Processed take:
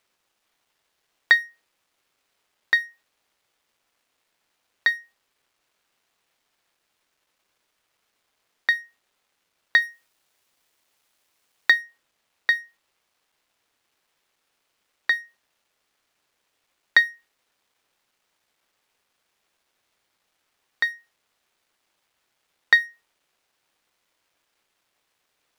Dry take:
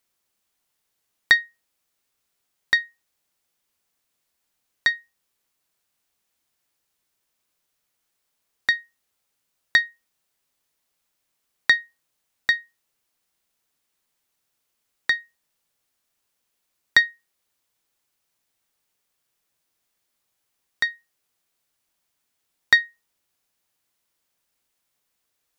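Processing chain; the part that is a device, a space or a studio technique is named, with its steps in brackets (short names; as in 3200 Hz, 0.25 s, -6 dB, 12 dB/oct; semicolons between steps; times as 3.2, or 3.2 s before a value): phone line with mismatched companding (BPF 320–3600 Hz; G.711 law mismatch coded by mu); 9.82–11.71 high shelf 5400 Hz +7.5 dB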